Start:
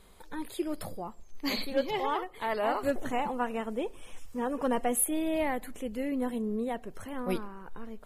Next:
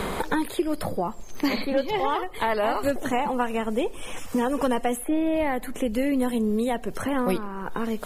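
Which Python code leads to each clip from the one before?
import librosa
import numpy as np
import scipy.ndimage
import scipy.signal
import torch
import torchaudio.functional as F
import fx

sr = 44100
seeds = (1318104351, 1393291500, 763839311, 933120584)

y = fx.band_squash(x, sr, depth_pct=100)
y = F.gain(torch.from_numpy(y), 6.0).numpy()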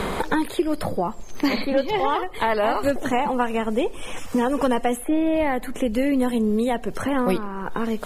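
y = fx.high_shelf(x, sr, hz=11000.0, db=-7.5)
y = F.gain(torch.from_numpy(y), 3.0).numpy()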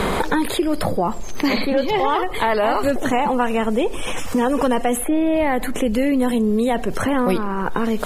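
y = fx.env_flatten(x, sr, amount_pct=50)
y = F.gain(torch.from_numpy(y), 1.0).numpy()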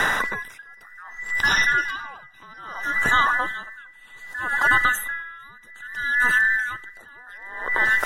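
y = fx.band_invert(x, sr, width_hz=2000)
y = fx.echo_feedback(y, sr, ms=453, feedback_pct=51, wet_db=-17)
y = y * 10.0 ** (-28 * (0.5 - 0.5 * np.cos(2.0 * np.pi * 0.63 * np.arange(len(y)) / sr)) / 20.0)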